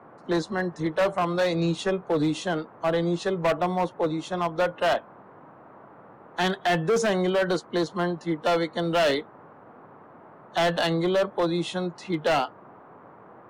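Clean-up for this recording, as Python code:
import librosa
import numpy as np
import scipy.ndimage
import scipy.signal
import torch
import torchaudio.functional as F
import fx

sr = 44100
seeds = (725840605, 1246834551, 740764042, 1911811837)

y = fx.fix_declip(x, sr, threshold_db=-18.5)
y = fx.noise_reduce(y, sr, print_start_s=5.22, print_end_s=5.72, reduce_db=21.0)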